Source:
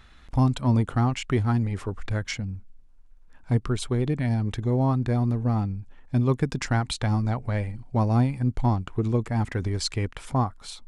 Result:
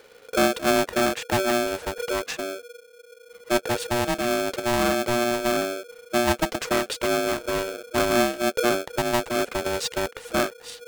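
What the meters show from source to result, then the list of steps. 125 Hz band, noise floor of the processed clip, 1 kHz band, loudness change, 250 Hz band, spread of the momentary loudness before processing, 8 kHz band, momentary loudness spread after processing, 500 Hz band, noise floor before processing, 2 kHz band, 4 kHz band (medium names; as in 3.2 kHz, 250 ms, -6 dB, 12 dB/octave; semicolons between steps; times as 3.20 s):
-15.0 dB, -51 dBFS, +5.5 dB, +1.5 dB, -1.0 dB, 8 LU, +9.0 dB, 7 LU, +9.0 dB, -51 dBFS, +10.5 dB, +8.0 dB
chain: polarity switched at an audio rate 480 Hz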